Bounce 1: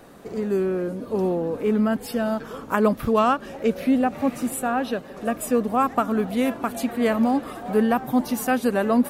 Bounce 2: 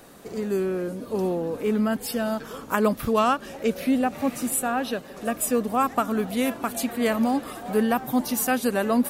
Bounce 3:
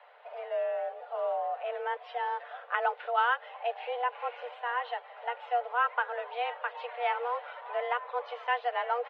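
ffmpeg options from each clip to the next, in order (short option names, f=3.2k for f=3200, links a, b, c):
-af "highshelf=f=3.1k:g=9,volume=-2.5dB"
-af "highpass=f=300:t=q:w=0.5412,highpass=f=300:t=q:w=1.307,lowpass=f=3k:t=q:w=0.5176,lowpass=f=3k:t=q:w=0.7071,lowpass=f=3k:t=q:w=1.932,afreqshift=240,aecho=1:1:6.8:0.38,volume=-6dB"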